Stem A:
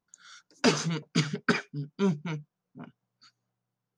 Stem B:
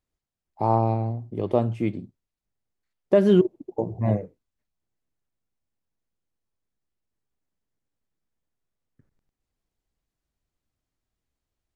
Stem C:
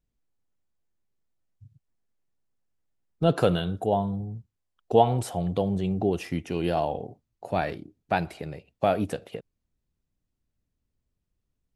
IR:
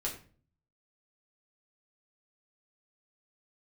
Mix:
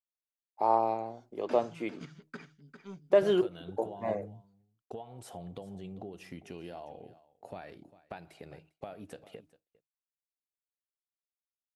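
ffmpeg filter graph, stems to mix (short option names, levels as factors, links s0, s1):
-filter_complex "[0:a]acrossover=split=2800[s0][s1];[s1]acompressor=threshold=0.0112:ratio=4:attack=1:release=60[s2];[s0][s2]amix=inputs=2:normalize=0,aeval=exprs='0.251*(cos(1*acos(clip(val(0)/0.251,-1,1)))-cos(1*PI/2))+0.01*(cos(7*acos(clip(val(0)/0.251,-1,1)))-cos(7*PI/2))':c=same,adelay=850,volume=0.106,asplit=2[s3][s4];[s4]volume=0.355[s5];[1:a]highpass=480,volume=0.794[s6];[2:a]lowshelf=f=150:g=-7,acompressor=threshold=0.0282:ratio=20,volume=0.376,asplit=2[s7][s8];[s8]volume=0.141[s9];[s5][s9]amix=inputs=2:normalize=0,aecho=0:1:400:1[s10];[s3][s6][s7][s10]amix=inputs=4:normalize=0,bandreject=f=155.7:t=h:w=4,bandreject=f=311.4:t=h:w=4,agate=range=0.0224:threshold=0.00158:ratio=3:detection=peak"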